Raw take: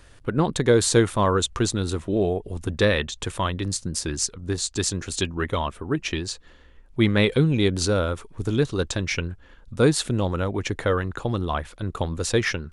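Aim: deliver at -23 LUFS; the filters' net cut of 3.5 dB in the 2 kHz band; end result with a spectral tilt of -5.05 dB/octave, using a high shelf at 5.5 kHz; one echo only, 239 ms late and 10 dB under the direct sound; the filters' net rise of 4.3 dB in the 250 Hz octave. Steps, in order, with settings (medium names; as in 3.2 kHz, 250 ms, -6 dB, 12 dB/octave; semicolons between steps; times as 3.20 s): peaking EQ 250 Hz +6 dB; peaking EQ 2 kHz -5 dB; treble shelf 5.5 kHz +4 dB; delay 239 ms -10 dB; trim -1.5 dB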